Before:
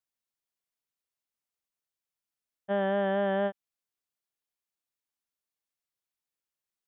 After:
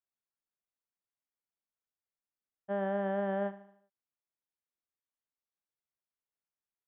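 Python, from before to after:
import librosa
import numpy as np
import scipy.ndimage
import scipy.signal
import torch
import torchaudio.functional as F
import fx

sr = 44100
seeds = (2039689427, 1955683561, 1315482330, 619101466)

p1 = scipy.signal.sosfilt(scipy.signal.butter(2, 1900.0, 'lowpass', fs=sr, output='sos'), x)
p2 = p1 + fx.echo_feedback(p1, sr, ms=76, feedback_pct=49, wet_db=-15, dry=0)
y = p2 * librosa.db_to_amplitude(-5.0)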